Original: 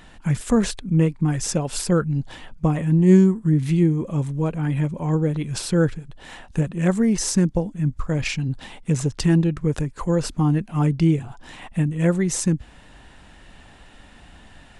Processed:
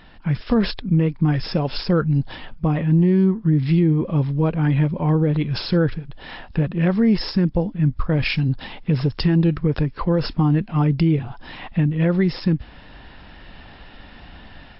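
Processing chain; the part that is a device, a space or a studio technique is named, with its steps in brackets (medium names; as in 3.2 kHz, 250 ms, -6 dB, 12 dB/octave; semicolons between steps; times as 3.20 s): low-bitrate web radio (level rider gain up to 5.5 dB; peak limiter -9.5 dBFS, peak gain reduction 7.5 dB; MP3 40 kbps 12 kHz)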